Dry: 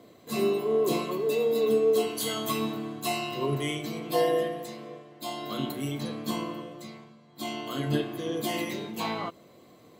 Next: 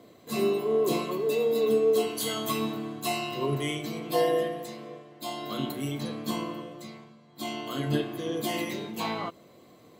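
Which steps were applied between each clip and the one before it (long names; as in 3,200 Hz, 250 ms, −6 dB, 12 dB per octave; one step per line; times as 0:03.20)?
no processing that can be heard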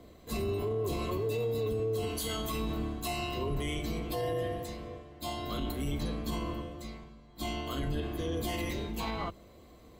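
sub-octave generator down 2 octaves, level +2 dB
brickwall limiter −23 dBFS, peak gain reduction 11 dB
level −2 dB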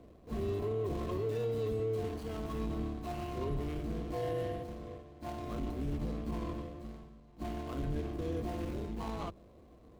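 running median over 25 samples
level −2 dB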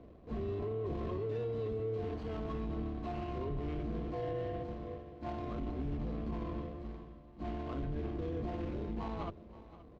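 brickwall limiter −32 dBFS, peak gain reduction 4.5 dB
high-frequency loss of the air 190 metres
single-tap delay 526 ms −16.5 dB
level +1.5 dB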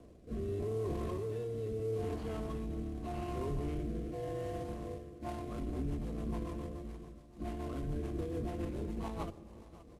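variable-slope delta modulation 64 kbit/s
rotating-speaker cabinet horn 0.8 Hz, later 7 Hz, at 0:04.94
convolution reverb RT60 1.9 s, pre-delay 3 ms, DRR 18 dB
level +1.5 dB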